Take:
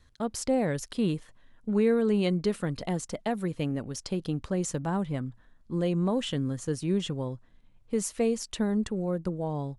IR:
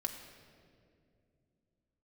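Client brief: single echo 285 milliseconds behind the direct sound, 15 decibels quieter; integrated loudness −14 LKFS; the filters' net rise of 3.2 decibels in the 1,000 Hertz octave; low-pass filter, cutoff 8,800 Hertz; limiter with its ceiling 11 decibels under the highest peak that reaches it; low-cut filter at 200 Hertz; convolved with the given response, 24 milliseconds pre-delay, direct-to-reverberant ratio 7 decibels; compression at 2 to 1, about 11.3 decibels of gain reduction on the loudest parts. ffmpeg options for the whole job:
-filter_complex "[0:a]highpass=200,lowpass=8800,equalizer=frequency=1000:width_type=o:gain=4.5,acompressor=threshold=-42dB:ratio=2,alimiter=level_in=9dB:limit=-24dB:level=0:latency=1,volume=-9dB,aecho=1:1:285:0.178,asplit=2[link_01][link_02];[1:a]atrim=start_sample=2205,adelay=24[link_03];[link_02][link_03]afir=irnorm=-1:irlink=0,volume=-7.5dB[link_04];[link_01][link_04]amix=inputs=2:normalize=0,volume=28.5dB"

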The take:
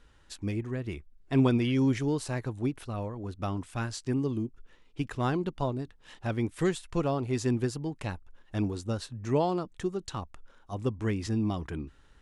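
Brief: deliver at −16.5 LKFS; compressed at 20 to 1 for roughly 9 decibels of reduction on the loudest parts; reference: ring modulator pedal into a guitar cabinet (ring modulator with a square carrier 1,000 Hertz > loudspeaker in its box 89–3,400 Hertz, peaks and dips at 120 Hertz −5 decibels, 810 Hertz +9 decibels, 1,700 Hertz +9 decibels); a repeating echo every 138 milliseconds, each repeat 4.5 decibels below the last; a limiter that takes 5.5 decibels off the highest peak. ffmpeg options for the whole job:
ffmpeg -i in.wav -af "acompressor=threshold=-27dB:ratio=20,alimiter=level_in=2dB:limit=-24dB:level=0:latency=1,volume=-2dB,aecho=1:1:138|276|414|552|690|828|966|1104|1242:0.596|0.357|0.214|0.129|0.0772|0.0463|0.0278|0.0167|0.01,aeval=exprs='val(0)*sgn(sin(2*PI*1000*n/s))':channel_layout=same,highpass=89,equalizer=frequency=120:width_type=q:width=4:gain=-5,equalizer=frequency=810:width_type=q:width=4:gain=9,equalizer=frequency=1700:width_type=q:width=4:gain=9,lowpass=frequency=3400:width=0.5412,lowpass=frequency=3400:width=1.3066,volume=13dB" out.wav

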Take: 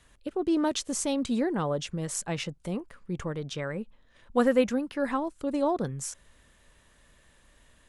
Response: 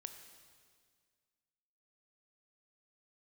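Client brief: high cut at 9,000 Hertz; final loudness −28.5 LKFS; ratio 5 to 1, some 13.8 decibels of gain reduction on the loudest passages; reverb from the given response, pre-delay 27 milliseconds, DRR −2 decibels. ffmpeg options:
-filter_complex "[0:a]lowpass=9000,acompressor=threshold=-34dB:ratio=5,asplit=2[link_01][link_02];[1:a]atrim=start_sample=2205,adelay=27[link_03];[link_02][link_03]afir=irnorm=-1:irlink=0,volume=6.5dB[link_04];[link_01][link_04]amix=inputs=2:normalize=0,volume=6dB"

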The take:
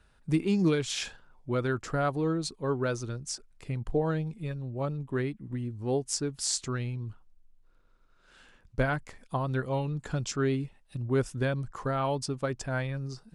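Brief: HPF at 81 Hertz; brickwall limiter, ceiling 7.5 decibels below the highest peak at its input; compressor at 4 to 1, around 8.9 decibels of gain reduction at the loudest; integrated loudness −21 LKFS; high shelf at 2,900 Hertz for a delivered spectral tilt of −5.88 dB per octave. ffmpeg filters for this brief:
ffmpeg -i in.wav -af "highpass=81,highshelf=frequency=2900:gain=-8.5,acompressor=threshold=-32dB:ratio=4,volume=17.5dB,alimiter=limit=-11dB:level=0:latency=1" out.wav

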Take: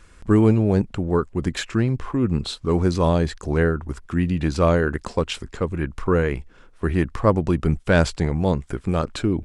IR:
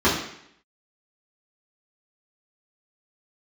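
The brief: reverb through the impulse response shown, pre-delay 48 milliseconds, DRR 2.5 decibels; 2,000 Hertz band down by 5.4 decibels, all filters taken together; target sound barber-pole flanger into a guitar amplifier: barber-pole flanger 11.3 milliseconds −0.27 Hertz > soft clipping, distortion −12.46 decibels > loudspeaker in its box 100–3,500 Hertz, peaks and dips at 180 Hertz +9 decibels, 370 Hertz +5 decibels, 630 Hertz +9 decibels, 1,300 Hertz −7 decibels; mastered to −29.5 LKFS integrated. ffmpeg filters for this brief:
-filter_complex "[0:a]equalizer=frequency=2000:width_type=o:gain=-5,asplit=2[link_01][link_02];[1:a]atrim=start_sample=2205,adelay=48[link_03];[link_02][link_03]afir=irnorm=-1:irlink=0,volume=-22.5dB[link_04];[link_01][link_04]amix=inputs=2:normalize=0,asplit=2[link_05][link_06];[link_06]adelay=11.3,afreqshift=-0.27[link_07];[link_05][link_07]amix=inputs=2:normalize=1,asoftclip=threshold=-14.5dB,highpass=100,equalizer=frequency=180:width_type=q:width=4:gain=9,equalizer=frequency=370:width_type=q:width=4:gain=5,equalizer=frequency=630:width_type=q:width=4:gain=9,equalizer=frequency=1300:width_type=q:width=4:gain=-7,lowpass=frequency=3500:width=0.5412,lowpass=frequency=3500:width=1.3066,volume=-9.5dB"

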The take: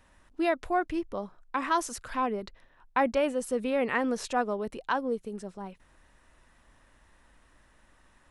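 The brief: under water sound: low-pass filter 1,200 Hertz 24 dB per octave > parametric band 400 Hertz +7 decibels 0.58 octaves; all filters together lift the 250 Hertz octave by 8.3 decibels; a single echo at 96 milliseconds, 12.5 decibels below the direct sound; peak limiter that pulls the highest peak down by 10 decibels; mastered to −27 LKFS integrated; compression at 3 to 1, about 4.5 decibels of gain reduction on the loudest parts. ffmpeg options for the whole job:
ffmpeg -i in.wav -af "equalizer=frequency=250:width_type=o:gain=7.5,acompressor=threshold=-25dB:ratio=3,alimiter=level_in=0.5dB:limit=-24dB:level=0:latency=1,volume=-0.5dB,lowpass=frequency=1200:width=0.5412,lowpass=frequency=1200:width=1.3066,equalizer=frequency=400:width_type=o:width=0.58:gain=7,aecho=1:1:96:0.237,volume=5.5dB" out.wav

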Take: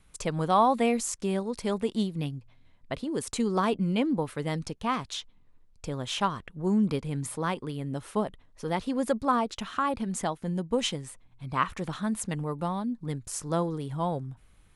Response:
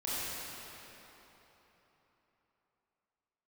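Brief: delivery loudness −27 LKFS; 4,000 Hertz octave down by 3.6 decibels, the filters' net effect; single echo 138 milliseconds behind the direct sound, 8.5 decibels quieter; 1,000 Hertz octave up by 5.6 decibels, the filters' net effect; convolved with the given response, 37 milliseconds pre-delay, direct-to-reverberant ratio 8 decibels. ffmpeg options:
-filter_complex "[0:a]equalizer=frequency=1000:width_type=o:gain=7,equalizer=frequency=4000:width_type=o:gain=-5.5,aecho=1:1:138:0.376,asplit=2[link_01][link_02];[1:a]atrim=start_sample=2205,adelay=37[link_03];[link_02][link_03]afir=irnorm=-1:irlink=0,volume=-14dB[link_04];[link_01][link_04]amix=inputs=2:normalize=0,volume=-1dB"

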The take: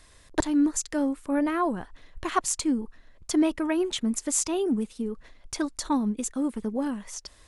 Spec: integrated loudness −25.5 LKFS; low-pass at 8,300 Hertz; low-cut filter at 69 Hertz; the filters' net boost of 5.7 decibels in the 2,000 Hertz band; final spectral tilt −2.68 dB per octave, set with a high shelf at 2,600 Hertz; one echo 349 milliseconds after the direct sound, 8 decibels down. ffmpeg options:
ffmpeg -i in.wav -af "highpass=69,lowpass=8300,equalizer=frequency=2000:width_type=o:gain=5.5,highshelf=frequency=2600:gain=4.5,aecho=1:1:349:0.398,volume=1dB" out.wav

